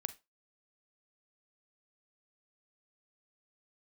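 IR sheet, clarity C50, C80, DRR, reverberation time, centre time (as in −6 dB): 17.0 dB, 25.0 dB, 12.0 dB, 0.25 s, 4 ms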